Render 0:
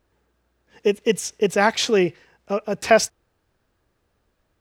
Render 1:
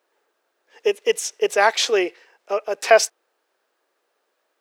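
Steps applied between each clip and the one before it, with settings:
high-pass filter 400 Hz 24 dB per octave
level +2 dB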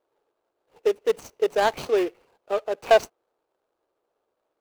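running median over 25 samples
level −1.5 dB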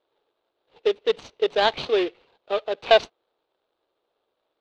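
low-pass with resonance 3,700 Hz, resonance Q 3.6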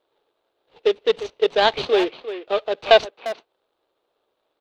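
far-end echo of a speakerphone 350 ms, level −11 dB
level +3 dB

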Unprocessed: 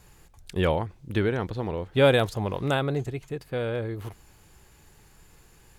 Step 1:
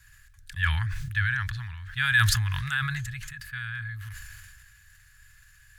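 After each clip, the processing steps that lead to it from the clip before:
elliptic band-stop filter 110–1,400 Hz, stop band 70 dB
parametric band 1,700 Hz +14 dB 0.21 octaves
level that may fall only so fast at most 27 dB per second
level −1.5 dB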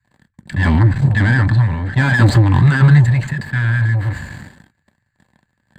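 leveller curve on the samples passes 5
moving average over 8 samples
convolution reverb, pre-delay 3 ms, DRR 9 dB
level −2 dB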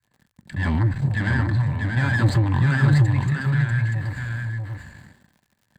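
surface crackle 60 per second −39 dBFS
on a send: single-tap delay 642 ms −4 dB
on the sum: level −8.5 dB

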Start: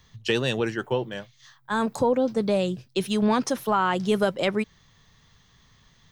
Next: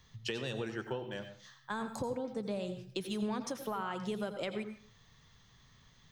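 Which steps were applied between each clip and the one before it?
downward compressor 4 to 1, threshold −31 dBFS, peak gain reduction 11.5 dB
on a send at −8.5 dB: convolution reverb RT60 0.45 s, pre-delay 81 ms
on the sum: level −5 dB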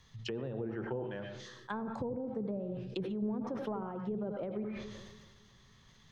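treble cut that deepens with the level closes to 480 Hz, closed at −32.5 dBFS
bucket-brigade delay 279 ms, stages 1,024, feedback 59%, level −21 dB
level that may fall only so fast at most 33 dB per second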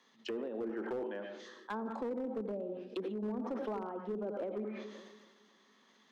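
Butterworth high-pass 220 Hz 48 dB per octave
high-shelf EQ 2,700 Hz −8.5 dB
hard clipping −33.5 dBFS, distortion −19 dB
level +1.5 dB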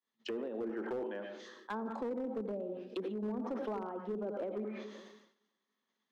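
downward expander −54 dBFS

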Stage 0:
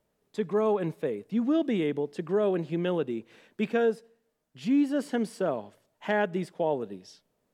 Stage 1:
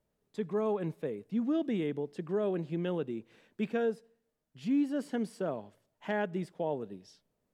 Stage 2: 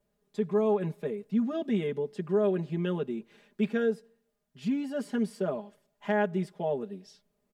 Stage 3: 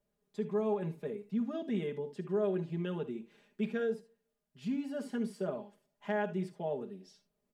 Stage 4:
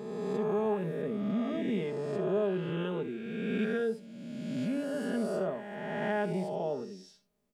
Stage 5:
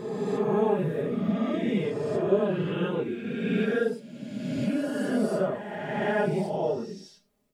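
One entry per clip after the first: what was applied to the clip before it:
low-shelf EQ 190 Hz +7 dB; level −7 dB
comb filter 4.9 ms, depth 99%
reverb whose tail is shaped and stops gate 90 ms rising, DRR 11 dB; level −6 dB
peak hold with a rise ahead of every peak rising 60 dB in 2.04 s
random phases in long frames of 50 ms; level +5.5 dB

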